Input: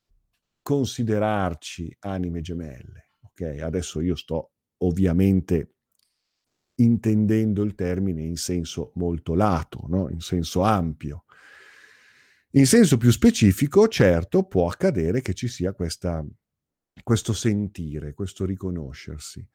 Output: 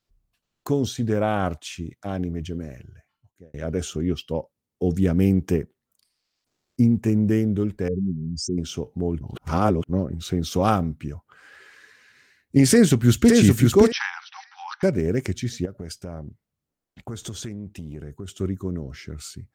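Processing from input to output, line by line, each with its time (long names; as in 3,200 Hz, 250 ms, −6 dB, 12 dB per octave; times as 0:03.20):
0:02.75–0:03.54: fade out
0:05.02–0:05.57: one half of a high-frequency compander encoder only
0:07.88–0:08.58: expanding power law on the bin magnitudes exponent 2.8
0:09.21–0:09.89: reverse
0:12.71–0:13.30: delay throw 570 ms, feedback 25%, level −2 dB
0:13.92–0:14.83: linear-phase brick-wall band-pass 770–6,100 Hz
0:15.65–0:18.28: downward compressor, threshold −30 dBFS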